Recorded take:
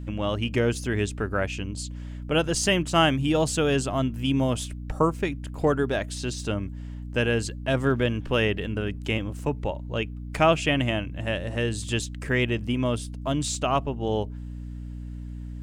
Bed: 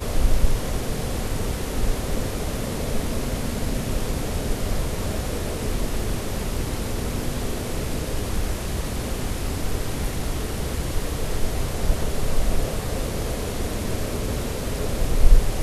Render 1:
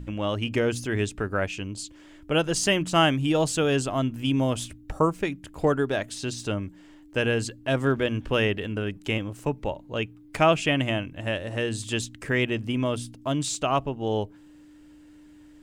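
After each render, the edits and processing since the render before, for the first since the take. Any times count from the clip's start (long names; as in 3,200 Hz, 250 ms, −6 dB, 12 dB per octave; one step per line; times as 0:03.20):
hum removal 60 Hz, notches 4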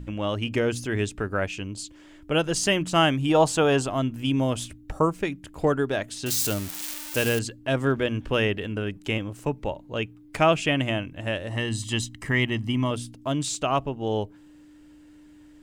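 0:03.29–0:03.87: parametric band 870 Hz +10 dB 1.2 octaves
0:06.26–0:07.39: spike at every zero crossing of −19 dBFS
0:11.49–0:12.91: comb filter 1 ms, depth 59%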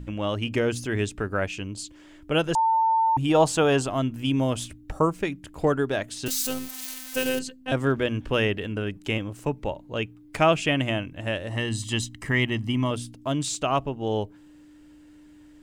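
0:02.55–0:03.17: beep over 897 Hz −18 dBFS
0:06.28–0:07.72: phases set to zero 258 Hz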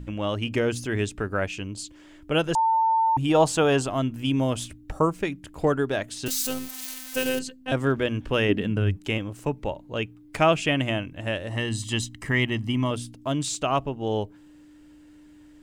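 0:08.48–0:08.95: parametric band 320 Hz → 82 Hz +13 dB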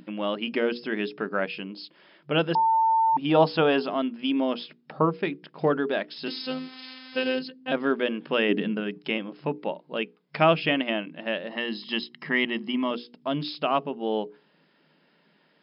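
mains-hum notches 60/120/180/240/300/360/420/480 Hz
brick-wall band-pass 150–5,300 Hz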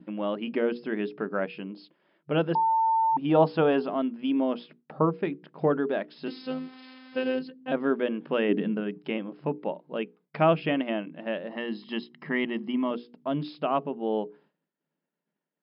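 low-pass filter 1,100 Hz 6 dB per octave
downward expander −52 dBFS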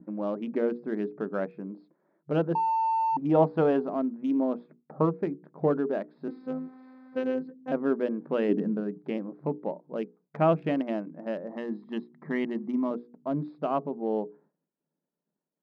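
adaptive Wiener filter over 15 samples
low-pass filter 1,200 Hz 6 dB per octave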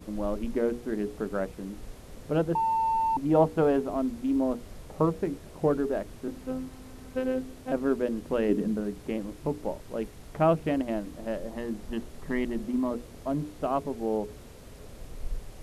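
mix in bed −20.5 dB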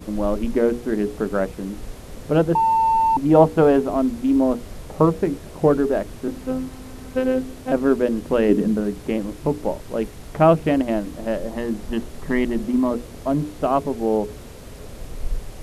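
level +8.5 dB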